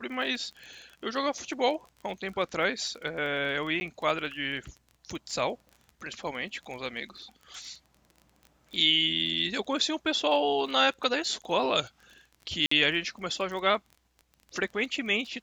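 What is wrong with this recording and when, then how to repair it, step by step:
surface crackle 21 per second −38 dBFS
0:03.80–0:03.81: drop-out 10 ms
0:12.66–0:12.71: drop-out 54 ms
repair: click removal
repair the gap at 0:03.80, 10 ms
repair the gap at 0:12.66, 54 ms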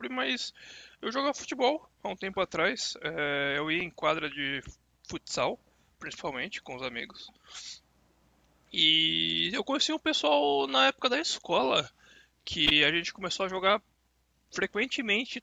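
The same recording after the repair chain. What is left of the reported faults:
none of them is left

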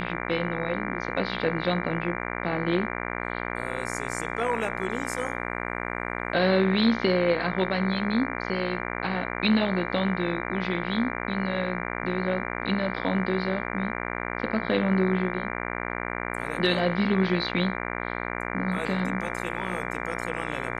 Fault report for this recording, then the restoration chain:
mains buzz 60 Hz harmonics 39 −32 dBFS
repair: hum removal 60 Hz, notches 39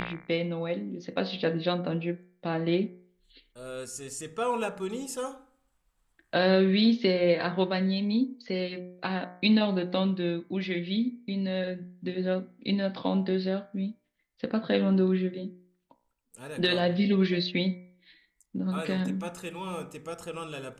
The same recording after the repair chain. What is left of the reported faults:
none of them is left

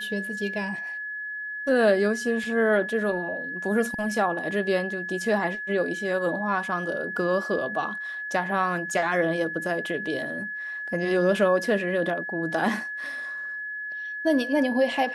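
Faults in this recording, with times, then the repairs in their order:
whistle 1,700 Hz −31 dBFS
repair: notch filter 1,700 Hz, Q 30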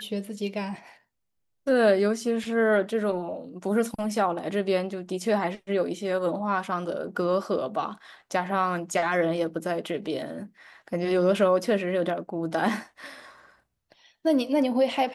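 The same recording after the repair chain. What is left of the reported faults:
none of them is left

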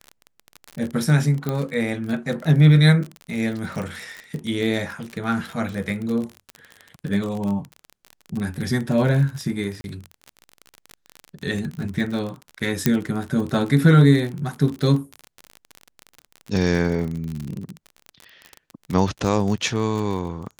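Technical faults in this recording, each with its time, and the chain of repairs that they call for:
surface crackle 34 per second −26 dBFS
0:01.49: click −12 dBFS
0:09.81–0:09.84: drop-out 31 ms
0:12.86: click −3 dBFS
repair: click removal
repair the gap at 0:09.81, 31 ms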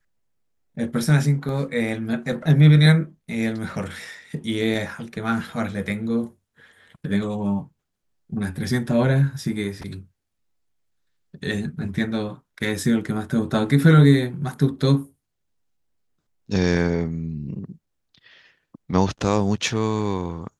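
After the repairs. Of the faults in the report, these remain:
0:01.49: click
0:12.86: click

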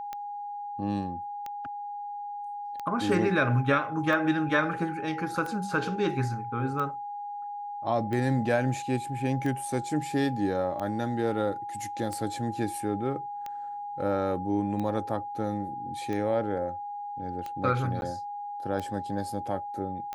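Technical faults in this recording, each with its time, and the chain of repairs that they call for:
scratch tick 45 rpm −22 dBFS
whistle 820 Hz −34 dBFS
0:18.01–0:18.02: drop-out 11 ms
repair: click removal
notch filter 820 Hz, Q 30
repair the gap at 0:18.01, 11 ms

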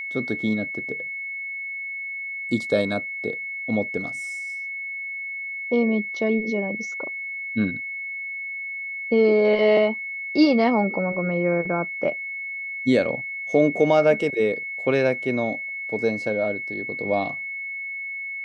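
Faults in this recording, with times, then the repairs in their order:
whistle 2,200 Hz −29 dBFS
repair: notch filter 2,200 Hz, Q 30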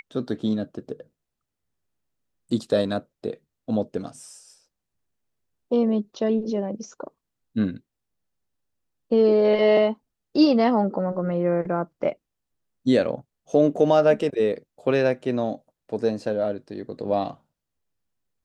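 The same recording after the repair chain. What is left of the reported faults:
none of them is left

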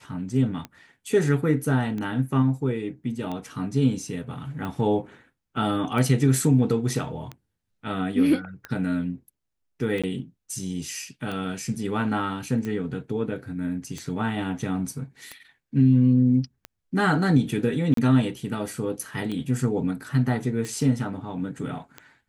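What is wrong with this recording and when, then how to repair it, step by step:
scratch tick 45 rpm −20 dBFS
0:10.02–0:10.04: drop-out 16 ms
0:17.94–0:17.97: drop-out 33 ms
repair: click removal
repair the gap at 0:10.02, 16 ms
repair the gap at 0:17.94, 33 ms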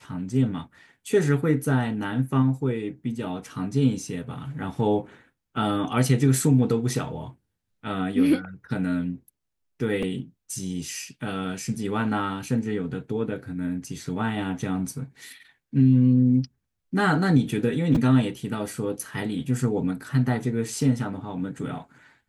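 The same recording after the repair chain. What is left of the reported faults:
none of them is left

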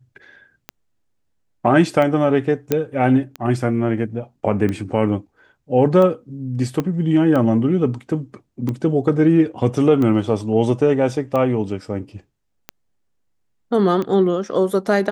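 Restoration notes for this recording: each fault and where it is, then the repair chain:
scratch tick 45 rpm −13 dBFS
0:02.72: click −4 dBFS
0:06.80: click −10 dBFS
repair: click removal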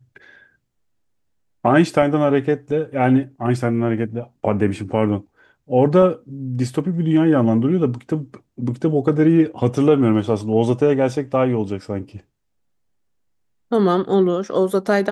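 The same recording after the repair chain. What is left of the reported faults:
0:06.80: click

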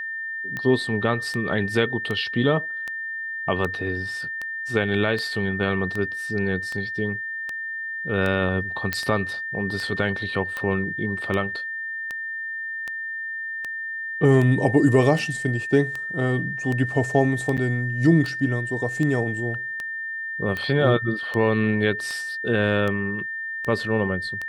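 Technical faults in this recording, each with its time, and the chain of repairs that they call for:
scratch tick 78 rpm −16 dBFS
whistle 1,800 Hz −28 dBFS
0:08.93: click
0:17.57–0:17.58: drop-out 7.4 ms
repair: click removal
notch filter 1,800 Hz, Q 30
repair the gap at 0:17.57, 7.4 ms

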